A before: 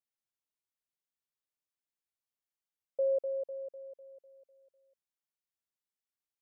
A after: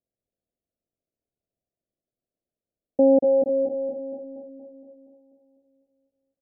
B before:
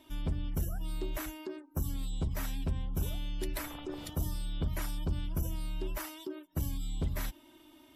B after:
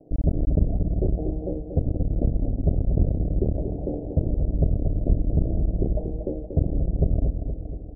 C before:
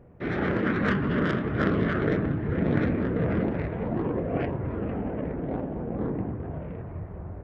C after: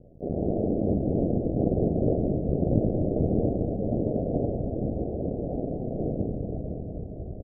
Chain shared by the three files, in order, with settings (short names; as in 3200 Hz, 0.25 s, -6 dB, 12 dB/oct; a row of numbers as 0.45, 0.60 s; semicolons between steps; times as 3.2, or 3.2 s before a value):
cycle switcher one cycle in 2, muted; steep low-pass 700 Hz 72 dB/oct; feedback echo 0.235 s, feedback 60%, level -7.5 dB; normalise peaks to -9 dBFS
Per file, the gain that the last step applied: +17.5, +14.0, +3.5 dB